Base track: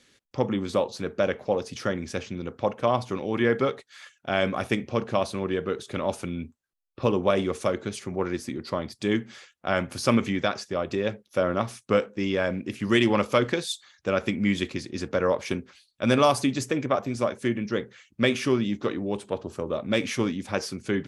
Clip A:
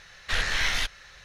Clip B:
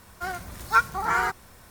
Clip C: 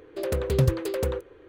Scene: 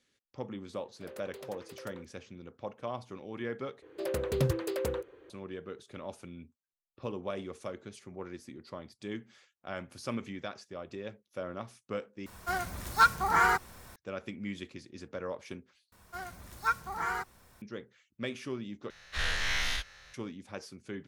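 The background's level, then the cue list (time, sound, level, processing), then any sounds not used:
base track -14.5 dB
0.84 add C -15.5 dB + HPF 520 Hz
3.82 replace with C -4 dB + HPF 150 Hz 6 dB/oct
12.26 replace with B -0.5 dB + hard clip -15 dBFS
15.92 replace with B -9.5 dB
18.9 replace with A -10 dB + spectral dilation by 0.12 s

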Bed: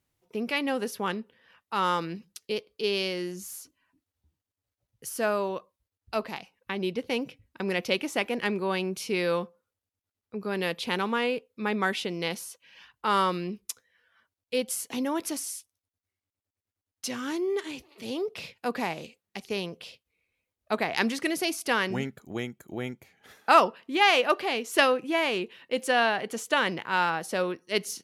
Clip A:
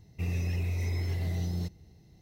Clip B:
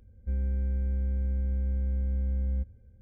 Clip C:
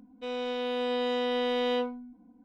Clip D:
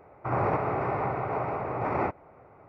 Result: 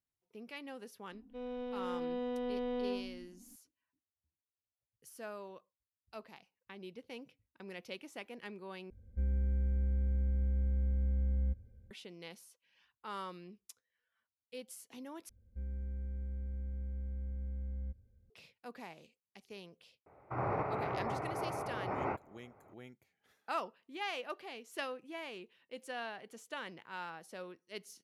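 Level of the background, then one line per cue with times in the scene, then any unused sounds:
bed -18.5 dB
1.12 add C -13 dB + tilt -4 dB/oct
8.9 replace with B -3.5 dB
15.29 replace with B -11.5 dB
20.06 add D -8.5 dB + record warp 45 rpm, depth 100 cents
not used: A

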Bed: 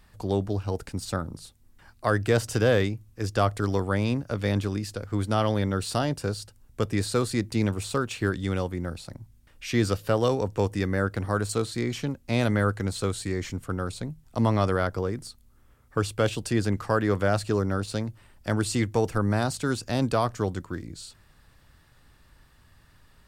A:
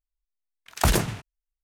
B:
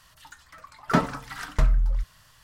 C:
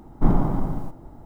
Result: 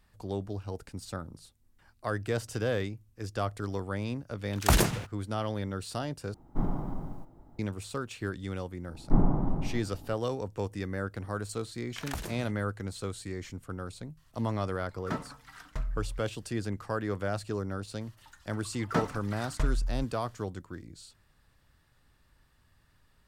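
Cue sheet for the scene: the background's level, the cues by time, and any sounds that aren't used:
bed -8.5 dB
3.85 add A -2 dB + bit-crush 11-bit
6.34 replace with C -11.5 dB
8.89 add C -4.5 dB + LPF 1100 Hz 6 dB/oct
11.3 add A -16.5 dB + three-band squash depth 100%
14.17 add B -13.5 dB
18.01 add B -8 dB

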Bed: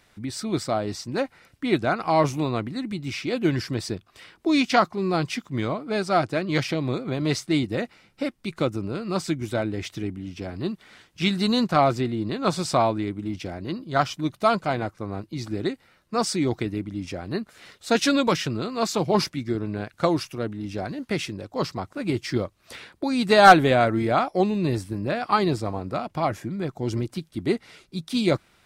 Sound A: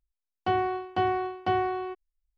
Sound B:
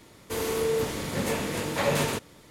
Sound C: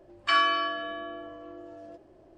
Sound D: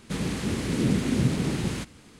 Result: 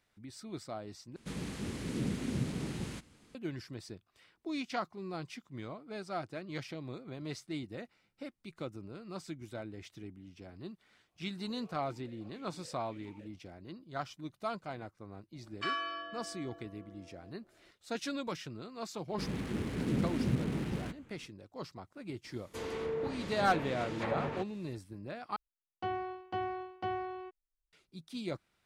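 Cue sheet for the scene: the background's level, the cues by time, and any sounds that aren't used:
bed -17 dB
1.16 replace with D -11 dB
11.08 add B -17 dB + vowel sequencer 7.1 Hz
15.34 add C -12.5 dB + notches 60/120/180 Hz
19.08 add D -8 dB + Wiener smoothing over 9 samples
22.24 add B -9.5 dB + treble ducked by the level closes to 1700 Hz, closed at -22 dBFS
25.36 replace with A -10.5 dB

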